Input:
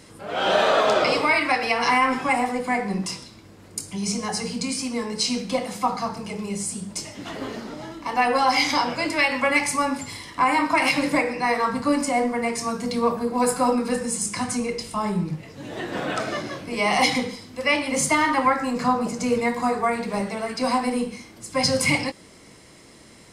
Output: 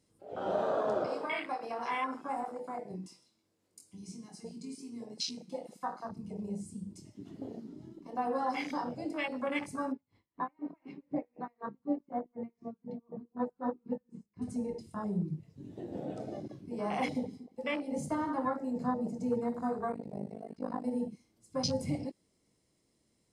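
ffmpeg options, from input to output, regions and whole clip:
-filter_complex "[0:a]asettb=1/sr,asplit=3[a][b][c];[a]atrim=end=1.074[d];[b]atrim=start=1.07:end=6.09,asetpts=PTS-STARTPTS,afade=t=in:d=0.004:c=qsin,afade=t=out:st=5.016:d=0.004:c=qsin,highpass=f=510:p=1,asplit=2[e][f];[f]adelay=22,volume=-5.5dB[g];[e][g]amix=inputs=2:normalize=0,atrim=end_sample=221382[h];[c]atrim=start=6.086[i];[d][h]acrossfade=d=0.004:c1=hsin:c2=qsin[j];[j][i]acrossfade=d=0.004:c1=qsin:c2=hsin,asettb=1/sr,asplit=3[k][l][m];[k]atrim=end=9.924[n];[l]atrim=start=9.92:end=14.42,asetpts=PTS-STARTPTS,afade=t=in:d=0.004:c=qsin,afade=t=out:st=4.496:d=0.004:c=qsin,lowpass=2k,aeval=exprs='val(0)*pow(10,-27*(0.5-0.5*cos(2*PI*4*n/s))/20)':c=same[o];[m]atrim=start=14.416[p];[n][o]acrossfade=d=0.004:c1=hsin:c2=qsin[q];[q][p]acrossfade=d=0.004:c1=qsin:c2=hsin,asettb=1/sr,asplit=3[r][s][t];[r]atrim=end=16.484[u];[s]atrim=start=16.48:end=18.67,asetpts=PTS-STARTPTS,afade=t=in:d=0.004:c=qsin,afade=t=out:st=2.186:d=0.004:c=qsin,agate=range=-33dB:threshold=-37dB:ratio=3:release=100:detection=peak,asplit=2[v][w];[w]adelay=235,lowpass=f=1.1k:p=1,volume=-14.5dB,asplit=2[x][y];[y]adelay=235,lowpass=f=1.1k:p=1,volume=0.43,asplit=2[z][aa];[aa]adelay=235,lowpass=f=1.1k:p=1,volume=0.43,asplit=2[ab][ac];[ac]adelay=235,lowpass=f=1.1k:p=1,volume=0.43[ad];[v][x][z][ab][ad]amix=inputs=5:normalize=0,atrim=end_sample=96579[ae];[t]atrim=start=18.666[af];[u][ae]acrossfade=d=0.004:c1=hsin:c2=qsin[ag];[ag][af]acrossfade=d=0.004:c1=qsin:c2=hsin,asettb=1/sr,asplit=3[ah][ai][aj];[ah]atrim=end=19.924[ak];[ai]atrim=start=19.92:end=20.84,asetpts=PTS-STARTPTS,afade=t=in:d=0.004:c=qsin,afade=t=out:st=0.916:d=0.004:c=qsin,acrossover=split=3200[al][am];[am]acompressor=threshold=-42dB:ratio=4:attack=1:release=60[an];[al][an]amix=inputs=2:normalize=0,tremolo=f=51:d=0.919[ao];[aj]atrim=start=20.836[ap];[ak][ao]acrossfade=d=0.004:c1=hsin:c2=qsin[aq];[aq][ap]acrossfade=d=0.004:c1=qsin:c2=hsin,equalizer=f=1.6k:w=0.55:g=-9,afwtdn=0.0447,volume=-7.5dB"

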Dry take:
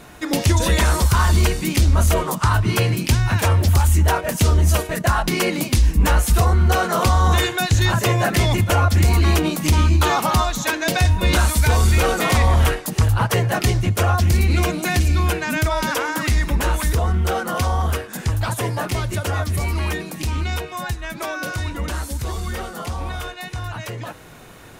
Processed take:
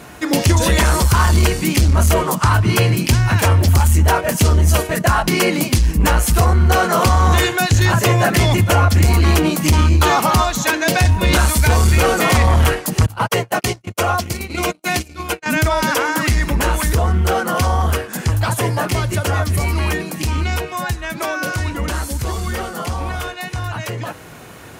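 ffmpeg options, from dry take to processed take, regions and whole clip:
-filter_complex "[0:a]asettb=1/sr,asplit=3[a][b][c];[a]atrim=end=13.064[d];[b]atrim=start=13.06:end=15.46,asetpts=PTS-STARTPTS,afade=t=in:d=0.004:c=qsin,afade=t=out:st=2.396:d=0.004:c=qsin,highpass=f=290:p=1,agate=range=-50dB:threshold=-24dB:ratio=16:release=100:detection=peak,bandreject=f=1.7k:w=8.2[e];[c]atrim=start=15.456[f];[d][e]acrossfade=d=0.004:c1=hsin:c2=qsin[g];[g][f]acrossfade=d=0.004:c1=qsin:c2=hsin,acontrast=84,highpass=59,bandreject=f=3.7k:w=17,volume=-2dB"

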